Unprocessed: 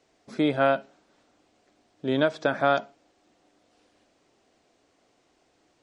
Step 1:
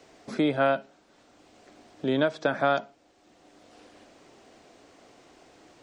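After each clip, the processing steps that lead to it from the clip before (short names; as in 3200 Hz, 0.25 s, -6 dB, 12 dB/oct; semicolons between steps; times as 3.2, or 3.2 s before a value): three-band squash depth 40%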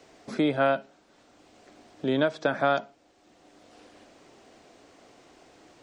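nothing audible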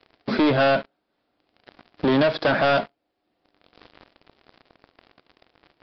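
sample leveller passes 5; downsampling 11025 Hz; gain -4.5 dB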